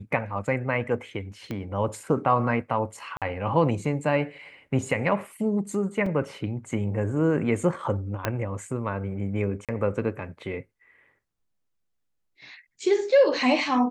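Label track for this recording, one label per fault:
1.510000	1.510000	click −20 dBFS
3.170000	3.220000	drop-out 47 ms
6.060000	6.060000	drop-out 3.9 ms
8.250000	8.250000	click −10 dBFS
9.650000	9.690000	drop-out 37 ms

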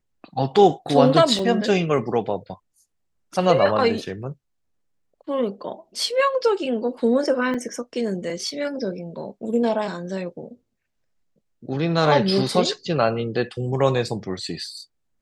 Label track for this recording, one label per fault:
1.390000	1.390000	drop-out 2.2 ms
7.540000	7.540000	drop-out 5 ms

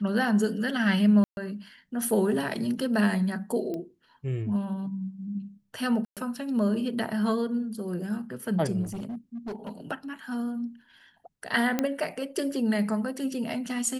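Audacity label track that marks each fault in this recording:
1.240000	1.370000	drop-out 131 ms
3.740000	3.740000	click −23 dBFS
6.050000	6.170000	drop-out 117 ms
8.830000	9.700000	clipping −31.5 dBFS
11.790000	11.790000	click −11 dBFS

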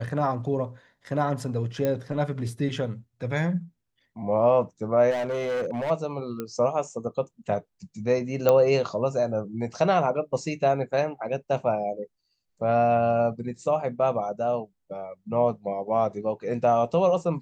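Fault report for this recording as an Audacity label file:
1.850000	1.850000	click −14 dBFS
5.100000	5.910000	clipping −24.5 dBFS
6.400000	6.400000	click −18 dBFS
8.490000	8.490000	click −8 dBFS

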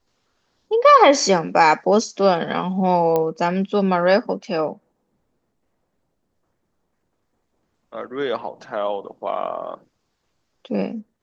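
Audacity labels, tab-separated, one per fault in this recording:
3.160000	3.160000	click −9 dBFS

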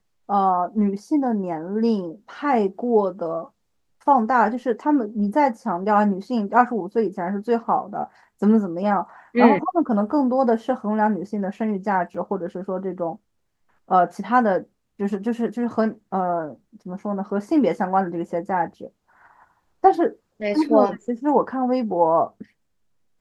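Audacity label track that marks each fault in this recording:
12.140000	12.140000	drop-out 4.6 ms

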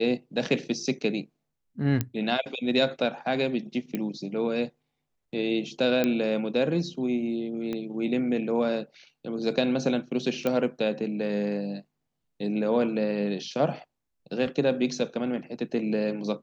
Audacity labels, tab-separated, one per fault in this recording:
2.010000	2.010000	click −12 dBFS
3.950000	3.950000	click −17 dBFS
6.040000	6.040000	click −11 dBFS
7.730000	7.730000	click −20 dBFS
10.470000	10.470000	click −14 dBFS

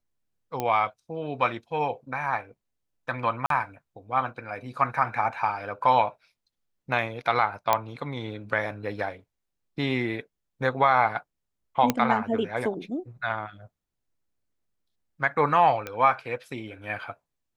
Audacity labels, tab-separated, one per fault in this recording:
0.600000	0.600000	click −14 dBFS
3.460000	3.500000	drop-out 43 ms
7.730000	7.730000	click −7 dBFS
11.900000	11.900000	click −7 dBFS
15.870000	15.870000	click −18 dBFS

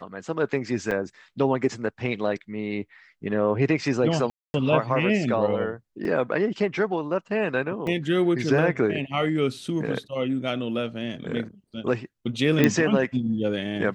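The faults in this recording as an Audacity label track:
0.910000	0.910000	drop-out 3.2 ms
4.300000	4.540000	drop-out 240 ms
6.050000	6.050000	drop-out 2 ms
7.870000	7.870000	drop-out 2.9 ms
12.640000	12.640000	click −6 dBFS

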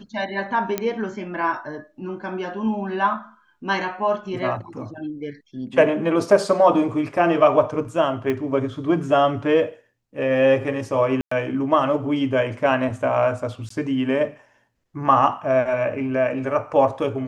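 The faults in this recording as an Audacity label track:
0.780000	0.780000	click −8 dBFS
8.300000	8.300000	click −13 dBFS
11.210000	11.310000	drop-out 104 ms
13.690000	13.700000	drop-out 14 ms

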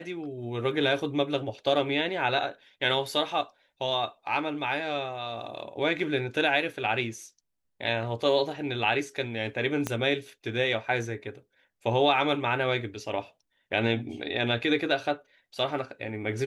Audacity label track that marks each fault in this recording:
9.870000	9.870000	click −14 dBFS

